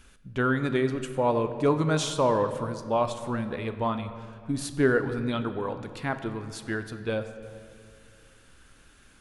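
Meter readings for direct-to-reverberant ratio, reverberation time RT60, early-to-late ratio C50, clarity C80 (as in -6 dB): 9.0 dB, 2.1 s, 10.5 dB, 11.5 dB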